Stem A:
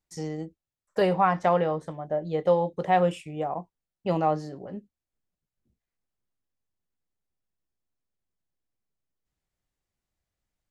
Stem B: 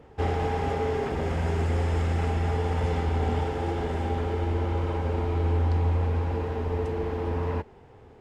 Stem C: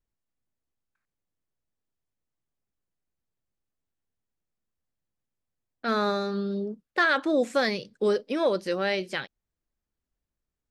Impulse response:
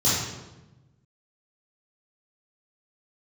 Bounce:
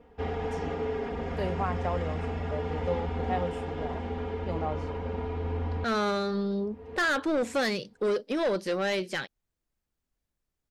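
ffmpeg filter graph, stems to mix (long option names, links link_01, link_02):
-filter_complex "[0:a]adelay=400,volume=-10dB[link_01];[1:a]lowpass=4500,aecho=1:1:4.2:0.85,volume=-7dB[link_02];[2:a]asoftclip=type=tanh:threshold=-24dB,volume=1.5dB,asplit=2[link_03][link_04];[link_04]apad=whole_len=362175[link_05];[link_02][link_05]sidechaincompress=threshold=-52dB:ratio=5:attack=16:release=258[link_06];[link_01][link_06][link_03]amix=inputs=3:normalize=0"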